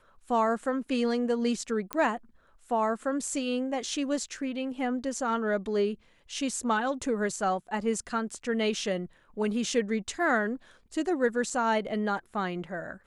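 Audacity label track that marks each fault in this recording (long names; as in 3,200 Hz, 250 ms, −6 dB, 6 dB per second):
1.930000	1.930000	click −14 dBFS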